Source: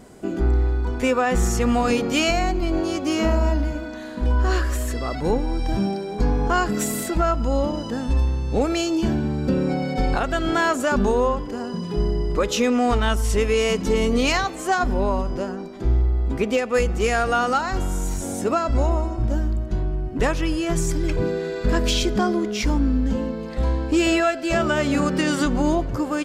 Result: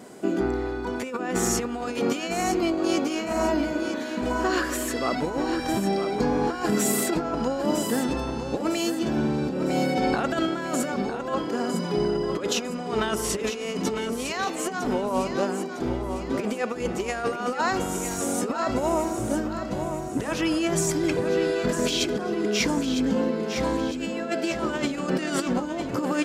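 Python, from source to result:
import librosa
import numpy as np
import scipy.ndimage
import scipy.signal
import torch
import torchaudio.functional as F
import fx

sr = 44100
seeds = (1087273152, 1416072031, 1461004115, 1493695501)

p1 = scipy.signal.sosfilt(scipy.signal.butter(2, 200.0, 'highpass', fs=sr, output='sos'), x)
p2 = fx.over_compress(p1, sr, threshold_db=-25.0, ratio=-0.5)
y = p2 + fx.echo_feedback(p2, sr, ms=955, feedback_pct=44, wet_db=-8.5, dry=0)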